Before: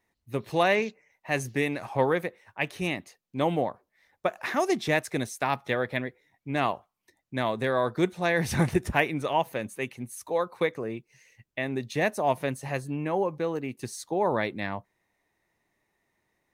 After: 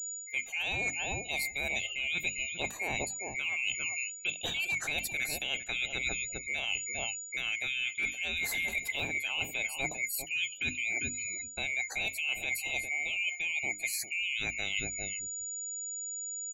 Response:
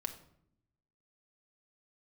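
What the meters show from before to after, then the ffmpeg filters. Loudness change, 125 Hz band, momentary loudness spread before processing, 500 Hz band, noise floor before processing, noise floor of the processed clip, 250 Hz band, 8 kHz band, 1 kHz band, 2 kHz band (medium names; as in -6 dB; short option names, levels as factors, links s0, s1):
-3.5 dB, -15.5 dB, 11 LU, -18.5 dB, -79 dBFS, -45 dBFS, -17.5 dB, +9.5 dB, -16.0 dB, +1.5 dB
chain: -filter_complex "[0:a]afftfilt=real='real(if(lt(b,920),b+92*(1-2*mod(floor(b/92),2)),b),0)':imag='imag(if(lt(b,920),b+92*(1-2*mod(floor(b/92),2)),b),0)':win_size=2048:overlap=0.75,highshelf=f=11000:g=9,acrossover=split=2400[s0][s1];[s0]volume=7.5,asoftclip=hard,volume=0.133[s2];[s2][s1]amix=inputs=2:normalize=0,asplit=2[s3][s4];[s4]adelay=397,lowpass=f=1100:p=1,volume=0.316,asplit=2[s5][s6];[s6]adelay=397,lowpass=f=1100:p=1,volume=0.22,asplit=2[s7][s8];[s8]adelay=397,lowpass=f=1100:p=1,volume=0.22[s9];[s3][s5][s7][s9]amix=inputs=4:normalize=0,aeval=exprs='val(0)+0.00631*sin(2*PI*6900*n/s)':c=same,afftdn=nr=24:nf=-50,bandreject=f=50:t=h:w=6,bandreject=f=100:t=h:w=6,bandreject=f=150:t=h:w=6,bandreject=f=200:t=h:w=6,bandreject=f=250:t=h:w=6,bandreject=f=300:t=h:w=6,alimiter=limit=0.1:level=0:latency=1:release=45,adynamicequalizer=threshold=0.00126:dfrequency=800:dqfactor=2.7:tfrequency=800:tqfactor=2.7:attack=5:release=100:ratio=0.375:range=2.5:mode=boostabove:tftype=bell,areverse,acompressor=threshold=0.0126:ratio=12,areverse,volume=2.51"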